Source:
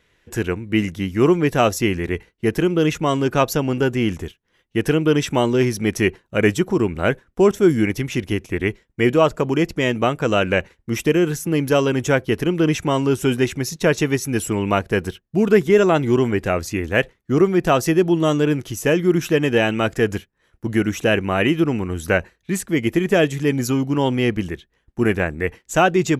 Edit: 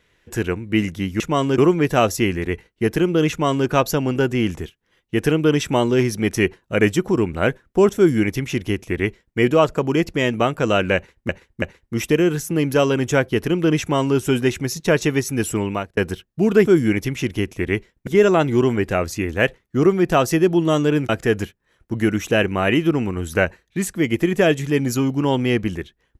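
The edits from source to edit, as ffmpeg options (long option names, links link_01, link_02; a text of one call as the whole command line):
ffmpeg -i in.wav -filter_complex "[0:a]asplit=9[link_01][link_02][link_03][link_04][link_05][link_06][link_07][link_08][link_09];[link_01]atrim=end=1.202[link_10];[link_02]atrim=start=2.918:end=3.302[link_11];[link_03]atrim=start=1.198:end=10.912[link_12];[link_04]atrim=start=10.578:end=10.912[link_13];[link_05]atrim=start=10.578:end=14.93,asetpts=PTS-STARTPTS,afade=type=out:start_time=3.972:duration=0.38[link_14];[link_06]atrim=start=14.93:end=15.622,asetpts=PTS-STARTPTS,afade=type=in:duration=0.004:curve=hsin[link_15];[link_07]atrim=start=7.588:end=9.002[link_16];[link_08]atrim=start=15.618:end=18.642[link_17];[link_09]atrim=start=19.818[link_18];[link_10][link_11]acrossfade=duration=0.004:curve1=hsin:curve2=hsin[link_19];[link_19][link_12]acrossfade=duration=0.004:curve1=hsin:curve2=hsin[link_20];[link_20][link_13]acrossfade=duration=0.004:curve1=hsin:curve2=hsin[link_21];[link_14][link_15]concat=n=2:v=0:a=1[link_22];[link_21][link_22]acrossfade=duration=0.004:curve1=hsin:curve2=hsin[link_23];[link_23][link_16]acrossfade=duration=0.004:curve1=hsin:curve2=hsin[link_24];[link_24][link_17]acrossfade=duration=0.004:curve1=hsin:curve2=hsin[link_25];[link_25][link_18]acrossfade=duration=0.004:curve1=hsin:curve2=hsin" out.wav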